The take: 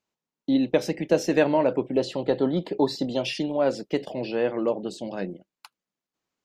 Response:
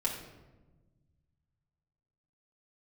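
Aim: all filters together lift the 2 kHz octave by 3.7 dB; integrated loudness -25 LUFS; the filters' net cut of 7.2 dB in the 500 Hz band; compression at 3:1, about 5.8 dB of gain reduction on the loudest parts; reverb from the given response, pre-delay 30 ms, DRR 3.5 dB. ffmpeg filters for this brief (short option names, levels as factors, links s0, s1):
-filter_complex "[0:a]equalizer=f=500:t=o:g=-9,equalizer=f=2000:t=o:g=5.5,acompressor=threshold=0.0447:ratio=3,asplit=2[s0][s1];[1:a]atrim=start_sample=2205,adelay=30[s2];[s1][s2]afir=irnorm=-1:irlink=0,volume=0.376[s3];[s0][s3]amix=inputs=2:normalize=0,volume=1.88"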